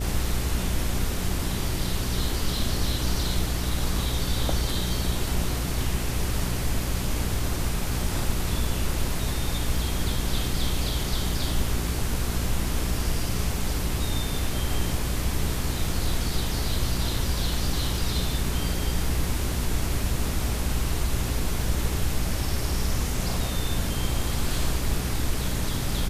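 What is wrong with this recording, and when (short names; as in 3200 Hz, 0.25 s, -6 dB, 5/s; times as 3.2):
hum 60 Hz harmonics 7 -30 dBFS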